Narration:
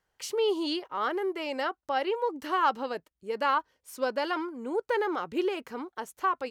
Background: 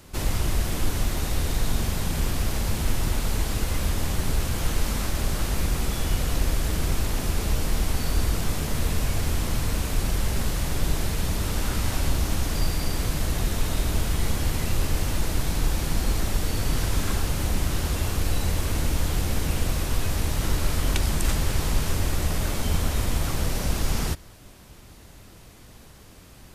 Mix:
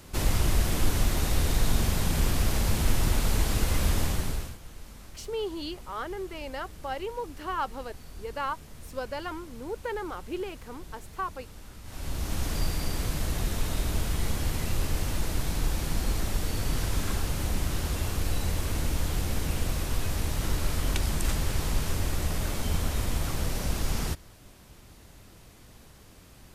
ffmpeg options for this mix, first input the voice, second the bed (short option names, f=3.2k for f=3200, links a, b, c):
-filter_complex "[0:a]adelay=4950,volume=-5.5dB[a];[1:a]volume=16.5dB,afade=t=out:st=3.98:d=0.6:silence=0.0944061,afade=t=in:st=11.84:d=0.61:silence=0.149624[b];[a][b]amix=inputs=2:normalize=0"